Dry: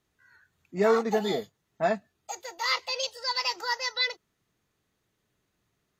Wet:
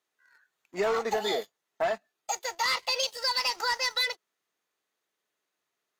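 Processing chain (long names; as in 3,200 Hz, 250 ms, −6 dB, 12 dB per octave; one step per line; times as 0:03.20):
high-pass filter 500 Hz 12 dB per octave
leveller curve on the samples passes 2
downward compressor, threshold −25 dBFS, peak gain reduction 7 dB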